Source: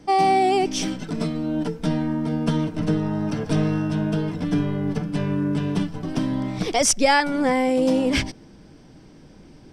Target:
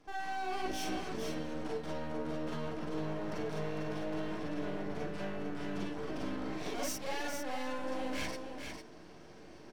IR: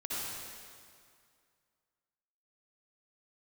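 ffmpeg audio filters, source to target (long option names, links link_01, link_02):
-filter_complex "[0:a]asplit=2[link_01][link_02];[link_02]highpass=frequency=720:poles=1,volume=21dB,asoftclip=type=tanh:threshold=-6dB[link_03];[link_01][link_03]amix=inputs=2:normalize=0,lowpass=frequency=1500:poles=1,volume=-6dB,areverse,acompressor=threshold=-23dB:ratio=6,areverse,highshelf=frequency=5900:gain=7,aeval=exprs='max(val(0),0)':channel_layout=same,aecho=1:1:451:0.501[link_04];[1:a]atrim=start_sample=2205,atrim=end_sample=3969,asetrate=70560,aresample=44100[link_05];[link_04][link_05]afir=irnorm=-1:irlink=0,volume=-4dB"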